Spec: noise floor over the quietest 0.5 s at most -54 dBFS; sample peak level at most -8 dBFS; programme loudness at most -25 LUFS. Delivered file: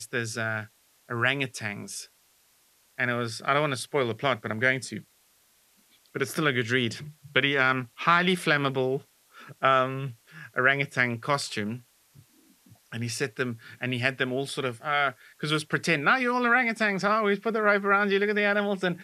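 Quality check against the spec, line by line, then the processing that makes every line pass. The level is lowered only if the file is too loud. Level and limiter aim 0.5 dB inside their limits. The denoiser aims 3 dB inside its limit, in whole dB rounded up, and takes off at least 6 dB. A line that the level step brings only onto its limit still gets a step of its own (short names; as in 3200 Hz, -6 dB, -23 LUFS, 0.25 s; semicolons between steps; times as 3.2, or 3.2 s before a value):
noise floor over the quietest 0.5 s -64 dBFS: OK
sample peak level -5.5 dBFS: fail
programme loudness -26.0 LUFS: OK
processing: limiter -8.5 dBFS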